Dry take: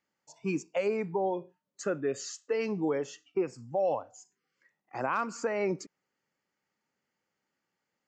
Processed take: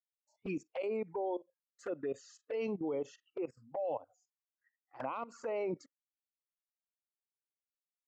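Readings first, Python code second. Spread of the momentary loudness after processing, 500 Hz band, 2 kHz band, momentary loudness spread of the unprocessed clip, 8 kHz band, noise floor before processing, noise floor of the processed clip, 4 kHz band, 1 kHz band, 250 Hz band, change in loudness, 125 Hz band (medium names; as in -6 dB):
7 LU, -6.5 dB, -11.5 dB, 8 LU, under -15 dB, -85 dBFS, under -85 dBFS, -11.5 dB, -8.0 dB, -7.0 dB, -7.0 dB, -10.0 dB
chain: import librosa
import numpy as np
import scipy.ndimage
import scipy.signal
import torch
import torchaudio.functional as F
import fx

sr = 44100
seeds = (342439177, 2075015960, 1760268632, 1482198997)

y = fx.noise_reduce_blind(x, sr, reduce_db=23)
y = fx.level_steps(y, sr, step_db=17)
y = fx.highpass(y, sr, hz=220.0, slope=6)
y = fx.env_flanger(y, sr, rest_ms=10.4, full_db=-33.5)
y = fx.high_shelf(y, sr, hz=3600.0, db=-8.5)
y = y * librosa.db_to_amplitude(1.5)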